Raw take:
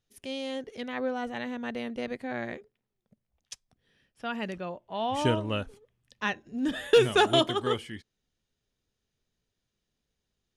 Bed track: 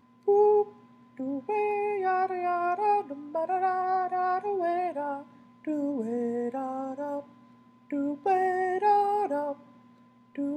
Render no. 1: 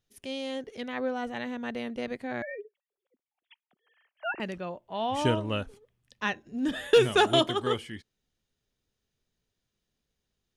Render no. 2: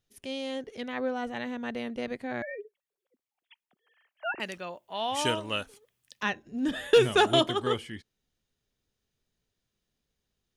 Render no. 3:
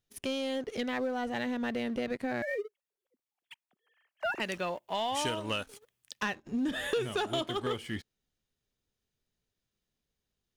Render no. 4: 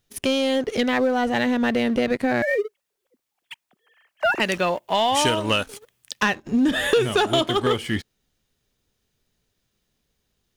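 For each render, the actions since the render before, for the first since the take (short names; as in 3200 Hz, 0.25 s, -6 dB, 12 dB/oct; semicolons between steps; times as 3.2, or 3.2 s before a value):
2.42–4.4 sine-wave speech
4.39–6.23 tilt +3 dB/oct
compressor 6:1, threshold -36 dBFS, peak gain reduction 19 dB; sample leveller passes 2
gain +12 dB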